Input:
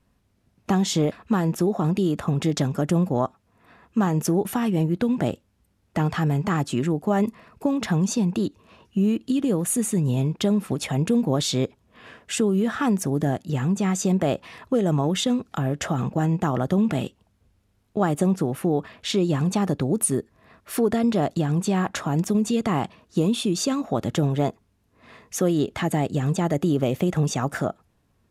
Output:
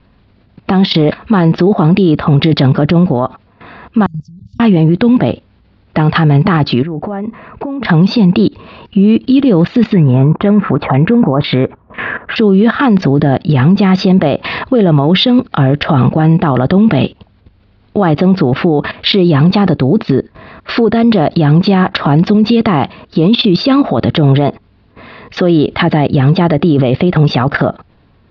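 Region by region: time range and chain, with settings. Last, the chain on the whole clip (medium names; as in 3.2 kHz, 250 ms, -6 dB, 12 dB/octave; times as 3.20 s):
4.06–4.60 s: Chebyshev band-stop 110–7100 Hz, order 4 + bass shelf 80 Hz -10 dB + de-hum 98.35 Hz, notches 3
6.82–7.85 s: low-pass 2 kHz + compression, threshold -32 dBFS + tape noise reduction on one side only encoder only
9.94–12.36 s: low-pass 5.4 kHz + LFO low-pass saw down 2 Hz 980–2300 Hz
whole clip: steep low-pass 4.7 kHz 72 dB/octave; level held to a coarse grid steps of 15 dB; loudness maximiser +27 dB; trim -1 dB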